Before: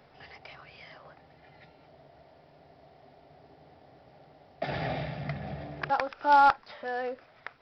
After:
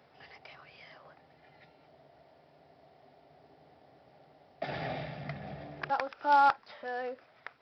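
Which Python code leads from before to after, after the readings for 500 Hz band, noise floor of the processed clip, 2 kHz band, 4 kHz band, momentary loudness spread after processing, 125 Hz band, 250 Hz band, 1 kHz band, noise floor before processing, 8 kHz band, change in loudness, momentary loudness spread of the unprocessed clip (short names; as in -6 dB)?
-3.5 dB, -63 dBFS, -3.5 dB, -3.5 dB, 22 LU, -6.0 dB, -5.0 dB, -3.5 dB, -59 dBFS, n/a, -3.5 dB, 22 LU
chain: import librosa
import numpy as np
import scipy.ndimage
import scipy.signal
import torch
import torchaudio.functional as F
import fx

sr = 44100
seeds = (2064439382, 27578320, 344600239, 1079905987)

y = fx.highpass(x, sr, hz=130.0, slope=6)
y = y * 10.0 ** (-3.5 / 20.0)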